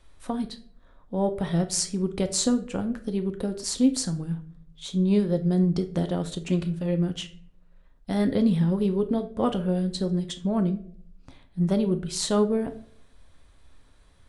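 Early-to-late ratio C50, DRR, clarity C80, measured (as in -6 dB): 13.5 dB, 7.5 dB, 18.0 dB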